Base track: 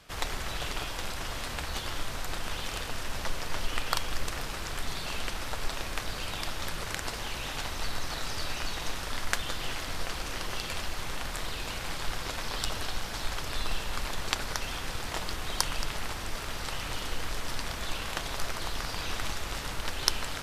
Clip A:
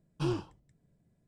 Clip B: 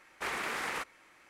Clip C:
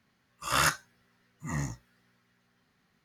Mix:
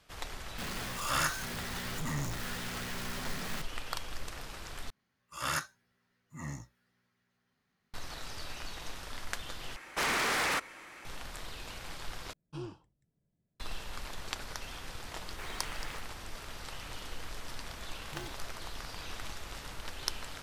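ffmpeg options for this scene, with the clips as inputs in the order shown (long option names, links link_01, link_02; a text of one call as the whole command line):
ffmpeg -i bed.wav -i cue0.wav -i cue1.wav -i cue2.wav -filter_complex "[3:a]asplit=2[link_01][link_02];[2:a]asplit=2[link_03][link_04];[1:a]asplit=2[link_05][link_06];[0:a]volume=-8.5dB[link_07];[link_01]aeval=exprs='val(0)+0.5*0.0447*sgn(val(0))':channel_layout=same[link_08];[link_03]aeval=exprs='0.0841*sin(PI/2*3.98*val(0)/0.0841)':channel_layout=same[link_09];[link_04]aeval=exprs='val(0)*gte(abs(val(0)),0.00596)':channel_layout=same[link_10];[link_06]acrusher=samples=37:mix=1:aa=0.000001[link_11];[link_07]asplit=4[link_12][link_13][link_14][link_15];[link_12]atrim=end=4.904[link_16];[link_02]atrim=end=3.04,asetpts=PTS-STARTPTS,volume=-8dB[link_17];[link_13]atrim=start=7.936:end=9.764[link_18];[link_09]atrim=end=1.29,asetpts=PTS-STARTPTS,volume=-5.5dB[link_19];[link_14]atrim=start=11.046:end=12.334[link_20];[link_05]atrim=end=1.27,asetpts=PTS-STARTPTS,volume=-10.5dB[link_21];[link_15]atrim=start=13.596[link_22];[link_08]atrim=end=3.04,asetpts=PTS-STARTPTS,volume=-7.5dB,afade=type=in:duration=0.004:curve=hsin,afade=type=out:start_time=3.036:duration=0.004:curve=hsin,adelay=580[link_23];[link_10]atrim=end=1.29,asetpts=PTS-STARTPTS,volume=-10.5dB,afade=type=in:duration=0.004:curve=hsin,afade=type=out:start_time=1.286:duration=0.004:curve=hsin,adelay=15170[link_24];[link_11]atrim=end=1.27,asetpts=PTS-STARTPTS,volume=-15dB,afade=type=in:duration=0.004:curve=hsin,afade=type=out:start_time=1.266:duration=0.004:curve=hsin,adelay=17920[link_25];[link_16][link_17]acrossfade=duration=0.004:curve1=hsin:curve2=hsin[link_26];[link_26][link_18]acrossfade=duration=0.004:curve1=hsin:curve2=hsin[link_27];[link_27][link_19]acrossfade=duration=0.004:curve1=hsin:curve2=hsin[link_28];[link_28][link_20]acrossfade=duration=0.004:curve1=hsin:curve2=hsin[link_29];[link_29][link_21]acrossfade=duration=0.004:curve1=hsin:curve2=hsin[link_30];[link_30][link_22]acrossfade=duration=0.004:curve1=hsin:curve2=hsin[link_31];[link_31][link_23][link_24][link_25]amix=inputs=4:normalize=0" out.wav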